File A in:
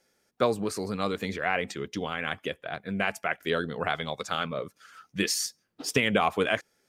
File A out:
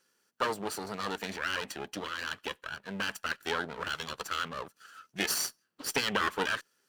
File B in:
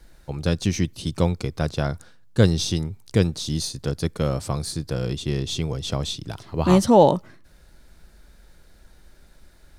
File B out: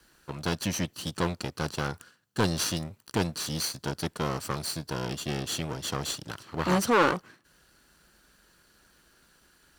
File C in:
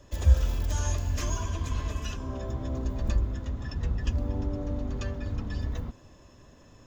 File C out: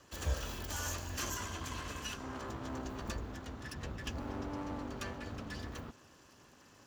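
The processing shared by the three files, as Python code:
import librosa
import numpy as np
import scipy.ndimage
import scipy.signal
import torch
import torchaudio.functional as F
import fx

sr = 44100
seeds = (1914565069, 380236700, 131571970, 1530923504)

y = fx.lower_of_two(x, sr, delay_ms=0.68)
y = fx.highpass(y, sr, hz=400.0, slope=6)
y = 10.0 ** (-14.5 / 20.0) * np.tanh(y / 10.0 ** (-14.5 / 20.0))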